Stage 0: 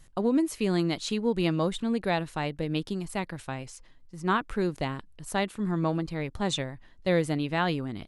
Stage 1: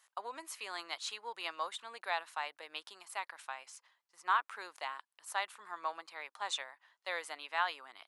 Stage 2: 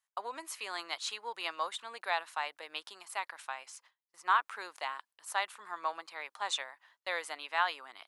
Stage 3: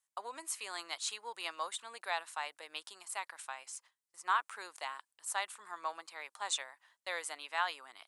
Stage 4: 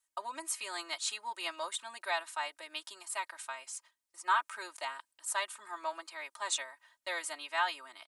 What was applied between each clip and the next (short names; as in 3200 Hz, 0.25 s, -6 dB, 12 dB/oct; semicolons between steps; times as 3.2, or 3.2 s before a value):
ladder high-pass 790 Hz, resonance 35%; gain +1.5 dB
gate with hold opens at -55 dBFS; gain +3 dB
bell 8500 Hz +11 dB 0.93 oct; gain -4 dB
comb 3.2 ms, depth 96%